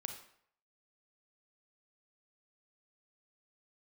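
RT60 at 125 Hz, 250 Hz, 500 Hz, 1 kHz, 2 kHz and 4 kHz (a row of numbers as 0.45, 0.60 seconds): 0.55, 0.55, 0.65, 0.65, 0.60, 0.50 seconds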